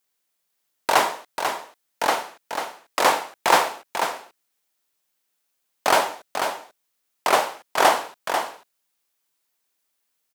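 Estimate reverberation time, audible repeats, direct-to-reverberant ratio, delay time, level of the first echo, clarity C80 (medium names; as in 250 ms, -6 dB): no reverb, 1, no reverb, 492 ms, -7.0 dB, no reverb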